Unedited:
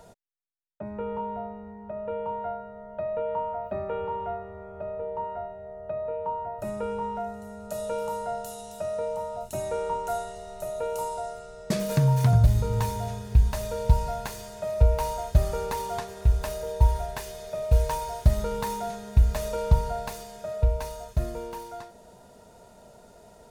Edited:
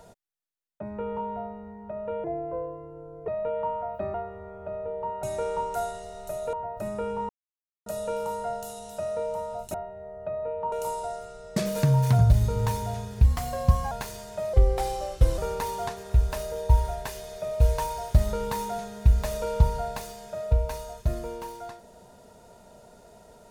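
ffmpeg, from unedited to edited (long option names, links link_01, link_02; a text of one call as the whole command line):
ffmpeg -i in.wav -filter_complex "[0:a]asplit=14[link_01][link_02][link_03][link_04][link_05][link_06][link_07][link_08][link_09][link_10][link_11][link_12][link_13][link_14];[link_01]atrim=end=2.244[link_15];[link_02]atrim=start=2.24:end=3,asetpts=PTS-STARTPTS,asetrate=32193,aresample=44100,atrim=end_sample=45912,asetpts=PTS-STARTPTS[link_16];[link_03]atrim=start=2.996:end=3.862[link_17];[link_04]atrim=start=4.278:end=5.372[link_18];[link_05]atrim=start=9.558:end=10.862[link_19];[link_06]atrim=start=6.348:end=7.11,asetpts=PTS-STARTPTS,afade=type=out:start_time=0.758:duration=0.004:curve=hsin[link_20];[link_07]atrim=start=7.11:end=7.68,asetpts=PTS-STARTPTS,volume=0[link_21];[link_08]atrim=start=7.68:end=9.562,asetpts=PTS-STARTPTS,afade=type=in:duration=0.004:curve=hsin[link_22];[link_09]atrim=start=5.368:end=6.352[link_23];[link_10]atrim=start=10.858:end=13.384[link_24];[link_11]atrim=start=13.38:end=14.16,asetpts=PTS-STARTPTS,asetrate=51156,aresample=44100,atrim=end_sample=29653,asetpts=PTS-STARTPTS[link_25];[link_12]atrim=start=14.156:end=14.784[link_26];[link_13]atrim=start=14.78:end=15.49,asetpts=PTS-STARTPTS,asetrate=37044,aresample=44100[link_27];[link_14]atrim=start=15.486[link_28];[link_15][link_16]acrossfade=duration=0.004:curve1=hsin:curve2=hsin[link_29];[link_29][link_17]acrossfade=duration=0.004:curve1=hsin:curve2=hsin[link_30];[link_30][link_18]acrossfade=duration=0.004:curve1=hsin:curve2=hsin[link_31];[link_31][link_19]acrossfade=duration=0.004:curve1=hsin:curve2=hsin[link_32];[link_20][link_21][link_22]concat=n=3:v=0:a=1[link_33];[link_32][link_33]acrossfade=duration=0.004:curve1=hsin:curve2=hsin[link_34];[link_34][link_23]acrossfade=duration=0.004:curve1=hsin:curve2=hsin[link_35];[link_35][link_24]acrossfade=duration=0.004:curve1=hsin:curve2=hsin[link_36];[link_36][link_25]acrossfade=duration=0.004:curve1=hsin:curve2=hsin[link_37];[link_37][link_26]acrossfade=duration=0.004:curve1=hsin:curve2=hsin[link_38];[link_38][link_27]acrossfade=duration=0.004:curve1=hsin:curve2=hsin[link_39];[link_39][link_28]acrossfade=duration=0.004:curve1=hsin:curve2=hsin" out.wav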